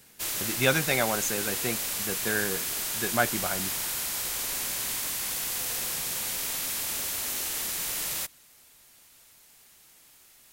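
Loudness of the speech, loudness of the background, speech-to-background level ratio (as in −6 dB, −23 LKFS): −30.0 LKFS, −28.5 LKFS, −1.5 dB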